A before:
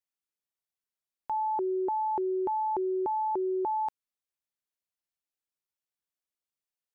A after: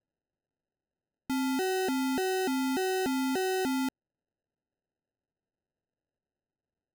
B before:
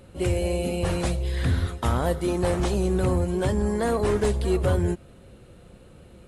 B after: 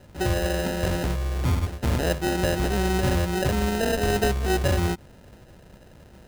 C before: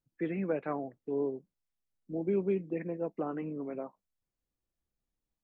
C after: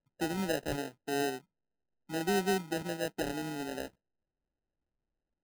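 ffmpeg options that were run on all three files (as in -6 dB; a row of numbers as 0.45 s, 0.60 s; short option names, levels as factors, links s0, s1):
-af "acrusher=samples=39:mix=1:aa=0.000001"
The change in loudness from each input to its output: +0.5 LU, +0.5 LU, +0.5 LU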